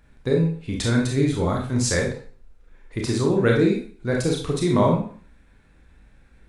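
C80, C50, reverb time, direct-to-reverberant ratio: 9.5 dB, 4.0 dB, 0.45 s, -1.0 dB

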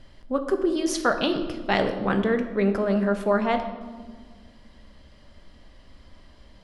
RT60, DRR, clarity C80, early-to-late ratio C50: 1.6 s, 6.0 dB, 10.5 dB, 9.0 dB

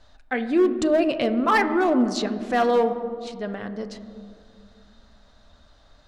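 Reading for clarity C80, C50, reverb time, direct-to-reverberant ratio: 12.0 dB, 11.0 dB, 2.1 s, 8.5 dB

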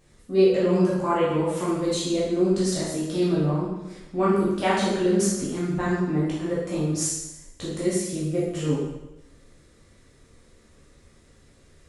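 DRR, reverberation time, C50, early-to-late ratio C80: -8.5 dB, 0.95 s, 0.5 dB, 3.5 dB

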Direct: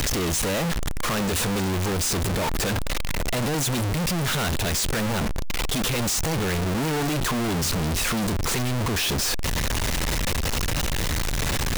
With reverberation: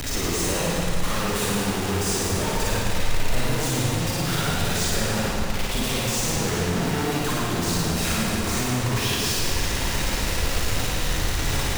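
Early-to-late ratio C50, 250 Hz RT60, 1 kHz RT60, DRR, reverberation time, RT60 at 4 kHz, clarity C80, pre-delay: -4.5 dB, 2.4 s, 2.4 s, -6.5 dB, 2.4 s, 2.2 s, -2.5 dB, 36 ms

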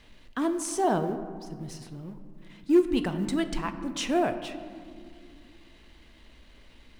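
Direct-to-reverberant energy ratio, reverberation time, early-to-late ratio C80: 8.0 dB, 2.1 s, 11.0 dB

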